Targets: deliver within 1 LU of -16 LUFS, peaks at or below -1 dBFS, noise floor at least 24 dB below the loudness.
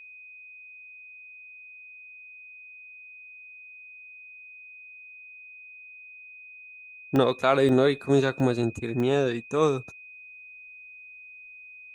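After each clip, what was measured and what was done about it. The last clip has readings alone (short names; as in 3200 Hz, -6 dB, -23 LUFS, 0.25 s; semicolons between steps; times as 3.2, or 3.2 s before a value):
dropouts 4; longest dropout 1.1 ms; steady tone 2500 Hz; tone level -44 dBFS; loudness -24.0 LUFS; peak -8.0 dBFS; loudness target -16.0 LUFS
-> interpolate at 7.16/7.69/8.4/9, 1.1 ms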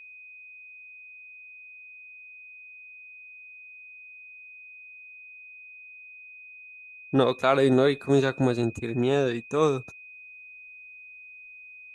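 dropouts 0; steady tone 2500 Hz; tone level -44 dBFS
-> notch 2500 Hz, Q 30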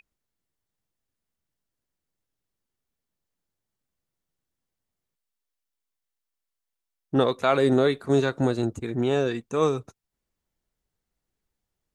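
steady tone none; loudness -24.0 LUFS; peak -8.0 dBFS; loudness target -16.0 LUFS
-> gain +8 dB; limiter -1 dBFS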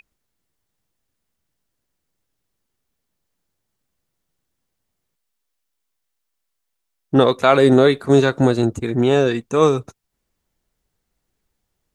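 loudness -16.5 LUFS; peak -1.0 dBFS; noise floor -77 dBFS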